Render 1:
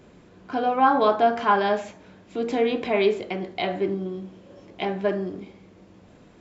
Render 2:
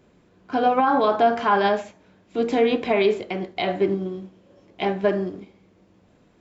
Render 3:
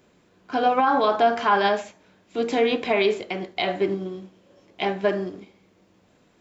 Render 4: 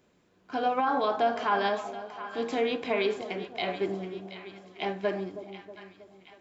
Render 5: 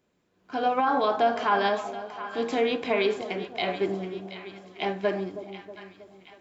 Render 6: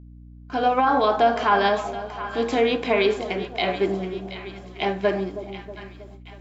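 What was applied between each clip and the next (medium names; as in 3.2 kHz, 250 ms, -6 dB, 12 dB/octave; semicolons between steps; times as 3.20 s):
loudness maximiser +15 dB; upward expansion 1.5:1, over -31 dBFS; trim -8.5 dB
tilt EQ +1.5 dB/octave
two-band feedback delay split 930 Hz, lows 319 ms, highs 726 ms, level -12 dB; trim -7 dB
level rider gain up to 9.5 dB; trim -6.5 dB
gate with hold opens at -43 dBFS; hum 60 Hz, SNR 20 dB; trim +4.5 dB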